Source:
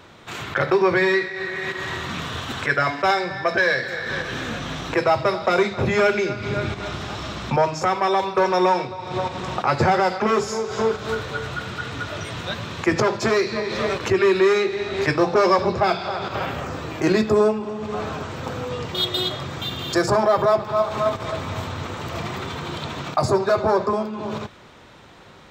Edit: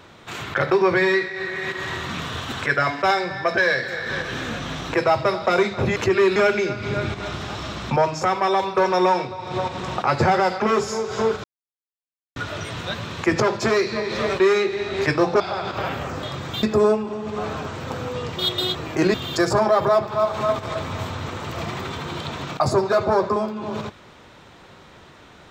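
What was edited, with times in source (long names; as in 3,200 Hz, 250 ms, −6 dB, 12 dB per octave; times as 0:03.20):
0:11.04–0:11.96: silence
0:14.00–0:14.40: move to 0:05.96
0:15.40–0:15.97: remove
0:16.80–0:17.19: swap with 0:19.31–0:19.71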